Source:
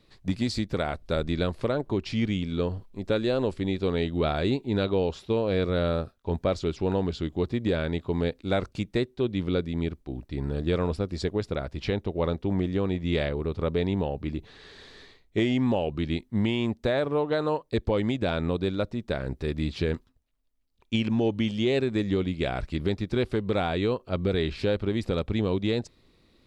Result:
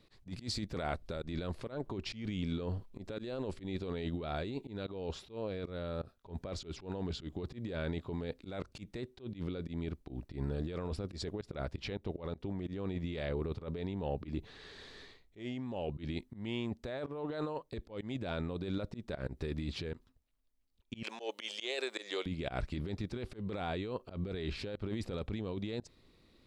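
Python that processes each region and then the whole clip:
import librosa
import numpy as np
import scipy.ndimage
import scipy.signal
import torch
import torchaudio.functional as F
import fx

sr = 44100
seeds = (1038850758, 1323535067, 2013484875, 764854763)

y = fx.chain(x, sr, fx.highpass(hz=480.0, slope=24),
    fx.high_shelf(hz=3300.0, db=11.0), at=(21.03, 22.26))
y = fx.over_compress(y, sr, threshold_db=-30.0, ratio=-1.0)
y = fx.auto_swell(y, sr, attack_ms=101.0)
y = F.gain(torch.from_numpy(y), -7.0).numpy()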